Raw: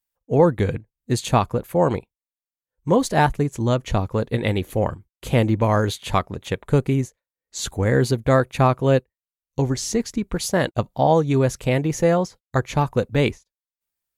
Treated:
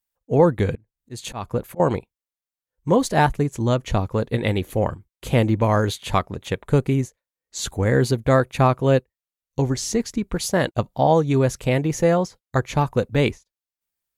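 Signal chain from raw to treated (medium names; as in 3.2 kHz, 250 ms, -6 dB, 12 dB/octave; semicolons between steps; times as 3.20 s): 0.75–1.80 s: slow attack 249 ms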